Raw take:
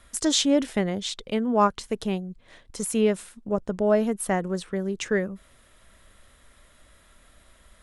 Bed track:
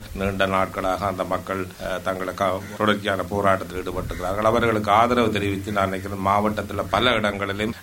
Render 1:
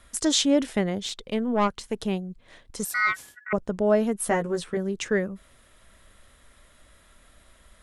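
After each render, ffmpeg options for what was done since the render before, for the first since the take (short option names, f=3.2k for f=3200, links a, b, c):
-filter_complex "[0:a]asettb=1/sr,asplit=3[a][b][c];[a]atrim=end=0.984[d];[b]atrim=start=0.98:end=1.97,asetpts=PTS-STARTPTS,afade=t=in:d=0.004:c=qsin,afade=t=out:st=0.986:d=0.004:c=qsin,aeval=exprs='(tanh(5.62*val(0)+0.4)-tanh(0.4))/5.62':c=same[e];[c]atrim=start=1.966[f];[d][e]acrossfade=d=0.004:c1=hsin:c2=qsin[g];[g][f]acrossfade=d=0.004:c1=qsin:c2=hsin,asettb=1/sr,asplit=3[h][i][j];[h]atrim=end=2.854[k];[i]atrim=start=2.85:end=3.53,asetpts=PTS-STARTPTS,afade=t=in:d=0.004:c=qsin,afade=t=out:st=0.676:d=0.004:c=qsin,aeval=exprs='val(0)*sin(2*PI*1700*n/s)':c=same[l];[j]atrim=start=3.526[m];[k][l]acrossfade=d=0.004:c1=hsin:c2=qsin[n];[n][m]acrossfade=d=0.004:c1=qsin:c2=hsin,asettb=1/sr,asplit=3[o][p][q];[o]atrim=end=4.204[r];[p]atrim=start=4.2:end=4.77,asetpts=PTS-STARTPTS,afade=t=in:d=0.004:c=qsin,afade=t=out:st=0.566:d=0.004:c=qsin,asplit=2[s][t];[t]adelay=13,volume=-3dB[u];[s][u]amix=inputs=2:normalize=0,atrim=end_sample=25137[v];[q]atrim=start=4.766[w];[r][v]acrossfade=d=0.004:c1=hsin:c2=qsin[x];[x][w]acrossfade=d=0.004:c1=qsin:c2=hsin"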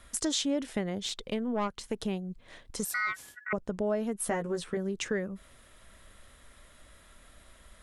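-af "acompressor=threshold=-31dB:ratio=2.5"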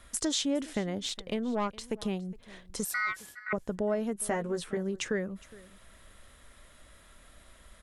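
-af "aecho=1:1:413:0.0891"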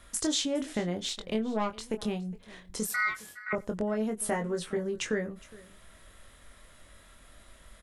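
-filter_complex "[0:a]asplit=2[a][b];[b]adelay=23,volume=-6dB[c];[a][c]amix=inputs=2:normalize=0,asplit=2[d][e];[e]adelay=93.29,volume=-27dB,highshelf=f=4k:g=-2.1[f];[d][f]amix=inputs=2:normalize=0"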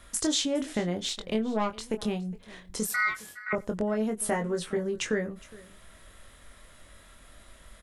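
-af "volume=2dB"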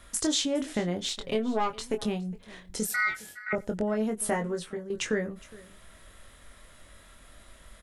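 -filter_complex "[0:a]asettb=1/sr,asplit=3[a][b][c];[a]atrim=end=1.194[d];[b]atrim=start=1.19:end=2.04,asetpts=PTS-STARTPTS,afade=t=in:d=0.004:c=qsin,afade=t=out:st=0.846:d=0.004:c=qsin,aecho=1:1:7.3:0.6,atrim=end_sample=37485[e];[c]atrim=start=2.036[f];[d][e]acrossfade=d=0.004:c1=hsin:c2=qsin[g];[g][f]acrossfade=d=0.004:c1=qsin:c2=hsin,asettb=1/sr,asplit=3[h][i][j];[h]atrim=end=2.734[k];[i]atrim=start=2.73:end=3.83,asetpts=PTS-STARTPTS,afade=t=in:d=0.004:c=qsin,afade=t=out:st=1.096:d=0.004:c=qsin,asuperstop=centerf=1100:order=4:qfactor=4.3[l];[j]atrim=start=3.826[m];[k][l]acrossfade=d=0.004:c1=hsin:c2=qsin[n];[n][m]acrossfade=d=0.004:c1=qsin:c2=hsin,asplit=2[o][p];[o]atrim=end=4.9,asetpts=PTS-STARTPTS,afade=t=out:st=4.39:d=0.51:silence=0.266073[q];[p]atrim=start=4.9,asetpts=PTS-STARTPTS,afade=t=in:d=0.004:c=hsin:silence=0.266073[r];[q][r]concat=n=2:v=0:a=1"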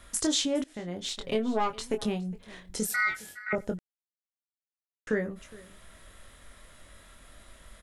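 -filter_complex "[0:a]asplit=4[a][b][c][d];[a]atrim=end=0.64,asetpts=PTS-STARTPTS,afade=t=out:st=0.636:d=0.004:c=hsin:silence=0.0944061[e];[b]atrim=start=0.64:end=3.79,asetpts=PTS-STARTPTS,afade=t=in:d=0.61:silence=0.0944061,afade=t=out:st=3.146:d=0.004:c=hsin[f];[c]atrim=start=3.79:end=5.07,asetpts=PTS-STARTPTS,volume=0[g];[d]atrim=start=5.07,asetpts=PTS-STARTPTS,afade=t=in:d=0.004:c=hsin[h];[e][f][g][h]concat=n=4:v=0:a=1"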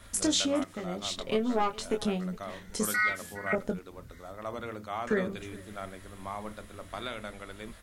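-filter_complex "[1:a]volume=-19dB[a];[0:a][a]amix=inputs=2:normalize=0"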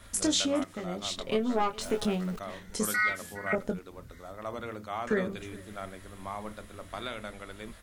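-filter_complex "[0:a]asettb=1/sr,asplit=3[a][b][c];[a]atrim=end=1.814[d];[b]atrim=start=1.81:end=2.39,asetpts=PTS-STARTPTS,afade=t=in:d=0.004:c=qsin,afade=t=out:st=0.576:d=0.004:c=qsin,aeval=exprs='val(0)+0.5*0.00944*sgn(val(0))':c=same[e];[c]atrim=start=2.386[f];[d][e]acrossfade=d=0.004:c1=hsin:c2=qsin[g];[g][f]acrossfade=d=0.004:c1=qsin:c2=hsin"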